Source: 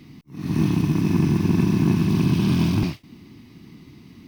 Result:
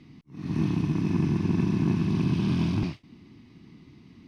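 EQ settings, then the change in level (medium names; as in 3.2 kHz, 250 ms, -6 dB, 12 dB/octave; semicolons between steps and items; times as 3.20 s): distance through air 71 m; -5.5 dB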